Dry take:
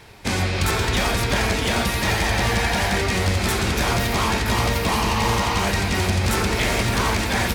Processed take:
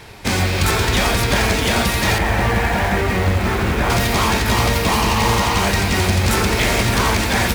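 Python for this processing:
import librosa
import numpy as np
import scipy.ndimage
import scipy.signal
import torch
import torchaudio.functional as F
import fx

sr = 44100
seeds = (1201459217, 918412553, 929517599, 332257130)

p1 = fx.lowpass(x, sr, hz=2200.0, slope=12, at=(2.18, 3.9))
p2 = (np.mod(10.0 ** (24.0 / 20.0) * p1 + 1.0, 2.0) - 1.0) / 10.0 ** (24.0 / 20.0)
p3 = p1 + (p2 * 10.0 ** (-10.0 / 20.0))
y = p3 * 10.0 ** (4.0 / 20.0)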